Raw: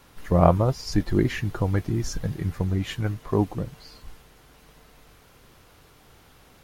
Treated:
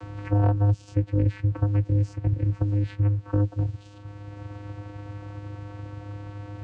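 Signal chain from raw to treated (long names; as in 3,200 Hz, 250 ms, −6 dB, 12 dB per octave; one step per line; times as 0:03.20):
stylus tracing distortion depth 0.049 ms
channel vocoder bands 8, square 102 Hz
multiband upward and downward compressor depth 70%
level +3 dB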